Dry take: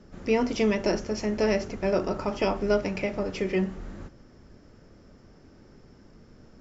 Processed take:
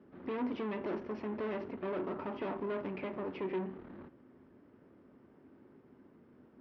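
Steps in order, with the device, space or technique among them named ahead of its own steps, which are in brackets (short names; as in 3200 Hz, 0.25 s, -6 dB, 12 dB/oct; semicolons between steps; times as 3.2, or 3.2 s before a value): guitar amplifier (tube stage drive 31 dB, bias 0.65; tone controls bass -2 dB, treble -13 dB; speaker cabinet 110–3800 Hz, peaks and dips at 260 Hz +8 dB, 370 Hz +6 dB, 990 Hz +5 dB); gain -5.5 dB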